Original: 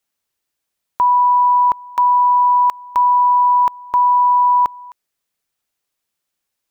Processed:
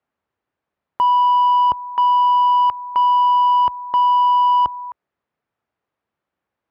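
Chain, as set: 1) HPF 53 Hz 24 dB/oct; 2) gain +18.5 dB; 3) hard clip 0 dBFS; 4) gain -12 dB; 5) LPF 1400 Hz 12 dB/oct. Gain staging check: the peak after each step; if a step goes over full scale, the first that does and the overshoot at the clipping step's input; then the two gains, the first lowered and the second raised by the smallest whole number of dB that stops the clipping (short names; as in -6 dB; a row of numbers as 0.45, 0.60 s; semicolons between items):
-8.5, +10.0, 0.0, -12.0, -11.5 dBFS; step 2, 10.0 dB; step 2 +8.5 dB, step 4 -2 dB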